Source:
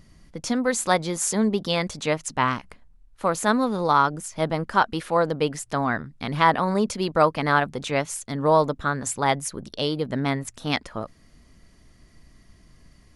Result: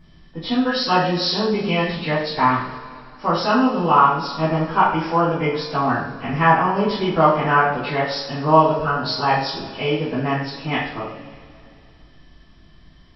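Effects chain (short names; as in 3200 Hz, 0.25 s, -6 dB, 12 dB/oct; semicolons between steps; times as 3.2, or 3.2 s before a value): nonlinear frequency compression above 1400 Hz 1.5:1; two-slope reverb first 0.51 s, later 2.7 s, from -18 dB, DRR -9 dB; gain -4.5 dB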